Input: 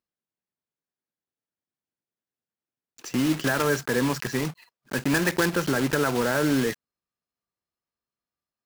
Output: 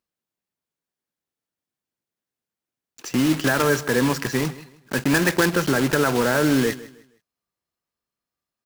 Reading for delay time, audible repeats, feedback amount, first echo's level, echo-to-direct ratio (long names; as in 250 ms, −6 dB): 157 ms, 2, 29%, −18.0 dB, −17.5 dB